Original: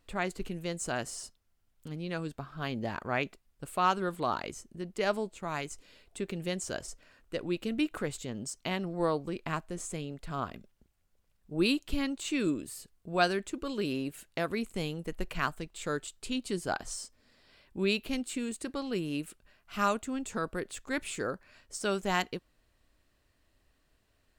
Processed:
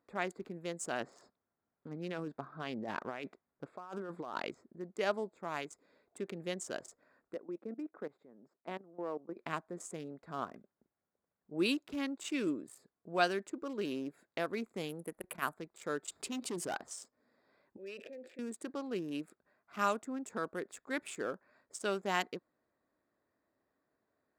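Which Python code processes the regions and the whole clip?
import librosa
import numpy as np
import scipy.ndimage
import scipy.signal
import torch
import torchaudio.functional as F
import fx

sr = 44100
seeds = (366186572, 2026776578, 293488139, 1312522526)

y = fx.chain(x, sr, fx.env_lowpass(base_hz=2900.0, full_db=-25.5),
    fx.over_compress(threshold_db=-36.0, ratio=-1.0), at=(1.0, 4.73))
y = fx.chain(y, sr, fx.high_shelf(hz=2100.0, db=-8.0),
    fx.level_steps(step_db=17),
    fx.bandpass_edges(low_hz=200.0, high_hz=2800.0), at=(7.34, 9.37))
y = fx.chain(y, sr, fx.high_shelf_res(hz=7700.0, db=11.0, q=3.0),
    fx.transformer_sat(knee_hz=170.0), at=(14.89, 15.54))
y = fx.chain(y, sr, fx.clip_hard(threshold_db=-30.5),
    fx.env_flatten(amount_pct=70), at=(16.08, 16.76))
y = fx.chain(y, sr, fx.vowel_filter(vowel='e'),
    fx.peak_eq(hz=79.0, db=7.5, octaves=1.8),
    fx.sustainer(db_per_s=27.0), at=(17.77, 18.39))
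y = fx.wiener(y, sr, points=15)
y = scipy.signal.sosfilt(scipy.signal.butter(2, 230.0, 'highpass', fs=sr, output='sos'), y)
y = fx.notch(y, sr, hz=4200.0, q=16.0)
y = F.gain(torch.from_numpy(y), -3.0).numpy()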